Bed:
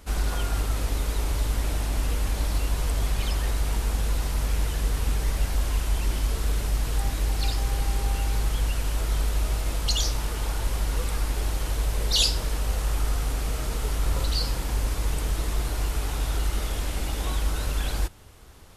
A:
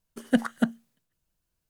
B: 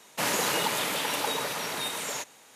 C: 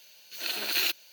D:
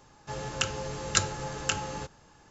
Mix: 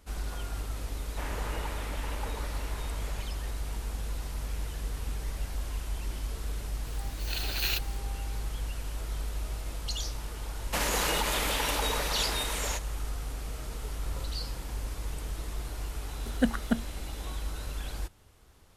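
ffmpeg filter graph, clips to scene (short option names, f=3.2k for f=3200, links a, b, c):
-filter_complex "[2:a]asplit=2[a][b];[0:a]volume=-9.5dB[c];[a]acrossover=split=2600[d][e];[e]acompressor=threshold=-45dB:ratio=4:attack=1:release=60[f];[d][f]amix=inputs=2:normalize=0[g];[3:a]aeval=exprs='if(lt(val(0),0),0.708*val(0),val(0))':c=same[h];[b]alimiter=level_in=17.5dB:limit=-1dB:release=50:level=0:latency=1[i];[1:a]aeval=exprs='val(0)+0.002*sin(2*PI*4000*n/s)':c=same[j];[g]atrim=end=2.55,asetpts=PTS-STARTPTS,volume=-10dB,afade=t=in:d=0.004:c=hsin,afade=t=out:st=2.546:d=0.004:c=hsin,adelay=990[k];[h]atrim=end=1.12,asetpts=PTS-STARTPTS,volume=-2.5dB,afade=t=in:d=0.004:c=hsin,afade=t=out:st=1.116:d=0.004:c=hsin,adelay=6870[l];[i]atrim=end=2.55,asetpts=PTS-STARTPTS,volume=-18dB,afade=t=in:d=0.004:c=hsin,afade=t=out:st=2.546:d=0.004:c=hsin,adelay=10550[m];[j]atrim=end=1.69,asetpts=PTS-STARTPTS,volume=-3.5dB,afade=t=in:d=0.004:c=hsin,afade=t=out:st=1.686:d=0.004:c=hsin,adelay=16090[n];[c][k][l][m][n]amix=inputs=5:normalize=0"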